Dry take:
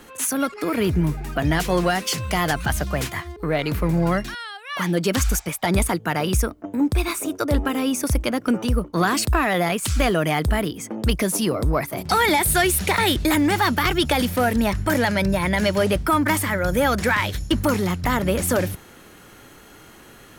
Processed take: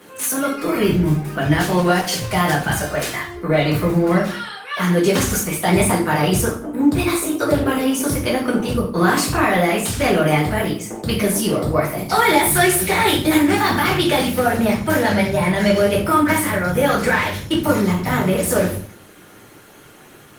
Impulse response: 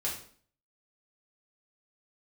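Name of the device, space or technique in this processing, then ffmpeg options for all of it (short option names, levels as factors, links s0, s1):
far-field microphone of a smart speaker: -filter_complex "[0:a]asettb=1/sr,asplit=3[s0][s1][s2];[s0]atrim=end=2.764[s3];[s1]atrim=start=2.76:end=3.23,asetpts=PTS-STARTPTS,afade=t=in:d=0.004:c=qsin,afade=t=out:st=0.466:d=0.004:c=qsin,lowshelf=f=140:g=-12[s4];[s2]atrim=start=3.226[s5];[s3][s4]acrossfade=d=0.004:c1=hsin:c2=qsin[s6];[s6][s5]acrossfade=d=0.004:c1=qsin:c2=hsin[s7];[1:a]atrim=start_sample=2205[s8];[s7][s8]afir=irnorm=-1:irlink=0,highpass=f=94:w=0.5412,highpass=f=94:w=1.3066,dynaudnorm=f=530:g=17:m=2.11" -ar 48000 -c:a libopus -b:a 20k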